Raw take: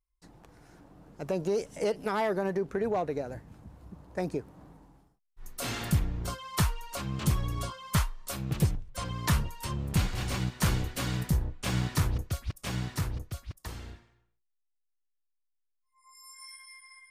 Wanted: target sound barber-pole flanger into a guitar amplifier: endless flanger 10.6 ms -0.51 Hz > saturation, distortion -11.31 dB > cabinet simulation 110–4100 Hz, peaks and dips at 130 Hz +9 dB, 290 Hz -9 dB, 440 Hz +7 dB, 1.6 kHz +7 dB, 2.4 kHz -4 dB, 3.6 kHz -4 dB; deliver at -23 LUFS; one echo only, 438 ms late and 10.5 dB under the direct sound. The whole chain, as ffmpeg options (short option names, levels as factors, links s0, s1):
-filter_complex "[0:a]aecho=1:1:438:0.299,asplit=2[s0][s1];[s1]adelay=10.6,afreqshift=-0.51[s2];[s0][s2]amix=inputs=2:normalize=1,asoftclip=threshold=0.0376,highpass=110,equalizer=f=130:t=q:w=4:g=9,equalizer=f=290:t=q:w=4:g=-9,equalizer=f=440:t=q:w=4:g=7,equalizer=f=1600:t=q:w=4:g=7,equalizer=f=2400:t=q:w=4:g=-4,equalizer=f=3600:t=q:w=4:g=-4,lowpass=f=4100:w=0.5412,lowpass=f=4100:w=1.3066,volume=4.73"